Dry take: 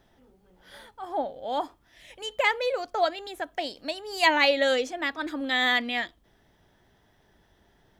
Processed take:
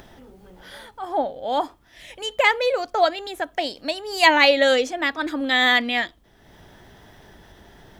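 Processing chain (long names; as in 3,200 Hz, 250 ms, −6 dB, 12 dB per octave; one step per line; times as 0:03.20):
upward compression, threshold −44 dBFS
level +6 dB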